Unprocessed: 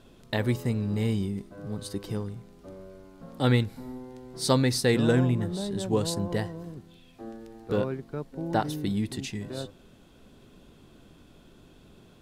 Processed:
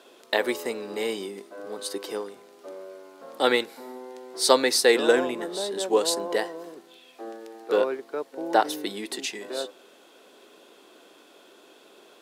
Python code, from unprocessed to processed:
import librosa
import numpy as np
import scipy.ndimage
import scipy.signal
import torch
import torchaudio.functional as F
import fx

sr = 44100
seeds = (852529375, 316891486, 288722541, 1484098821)

y = scipy.signal.sosfilt(scipy.signal.butter(4, 370.0, 'highpass', fs=sr, output='sos'), x)
y = y * 10.0 ** (7.0 / 20.0)